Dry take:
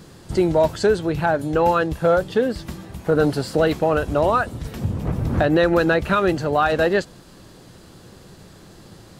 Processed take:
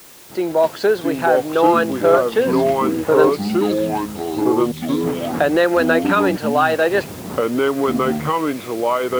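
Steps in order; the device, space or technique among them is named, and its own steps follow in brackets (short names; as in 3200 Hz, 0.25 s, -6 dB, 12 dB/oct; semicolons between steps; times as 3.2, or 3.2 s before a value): dictaphone (BPF 330–4300 Hz; AGC gain up to 9.5 dB; wow and flutter 27 cents; white noise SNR 24 dB); 3.29–5.01 inverse Chebyshev high-pass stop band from 600 Hz, stop band 80 dB; echoes that change speed 0.57 s, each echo -4 st, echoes 3; gain -2.5 dB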